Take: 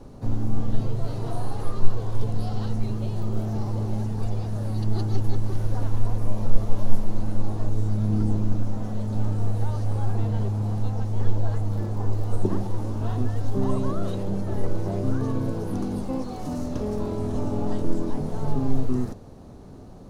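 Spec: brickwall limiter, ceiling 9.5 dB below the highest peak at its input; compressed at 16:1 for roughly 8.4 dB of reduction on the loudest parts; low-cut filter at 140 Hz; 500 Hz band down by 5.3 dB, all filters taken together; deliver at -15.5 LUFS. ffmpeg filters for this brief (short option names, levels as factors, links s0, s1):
-af "highpass=140,equalizer=f=500:t=o:g=-7,acompressor=threshold=0.0282:ratio=16,volume=18.8,alimiter=limit=0.422:level=0:latency=1"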